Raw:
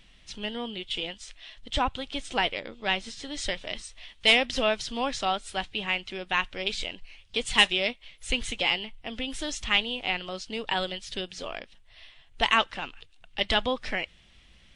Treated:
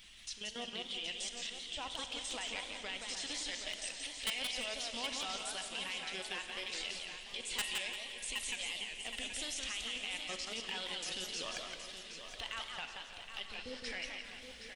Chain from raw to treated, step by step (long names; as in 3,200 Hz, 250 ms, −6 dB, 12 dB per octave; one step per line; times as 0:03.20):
spectral magnitudes quantised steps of 15 dB
high-shelf EQ 6,100 Hz +11.5 dB
downward compressor 2 to 1, threshold −48 dBFS, peak gain reduction 18.5 dB
tilt shelving filter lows −5 dB
output level in coarse steps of 15 dB
healed spectral selection 0:13.52–0:13.77, 590–9,100 Hz
repeating echo 770 ms, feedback 45%, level −9 dB
convolution reverb RT60 2.8 s, pre-delay 35 ms, DRR 7.5 dB
wave folding −30.5 dBFS
feedback echo with a swinging delay time 172 ms, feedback 31%, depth 207 cents, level −4.5 dB
level +2.5 dB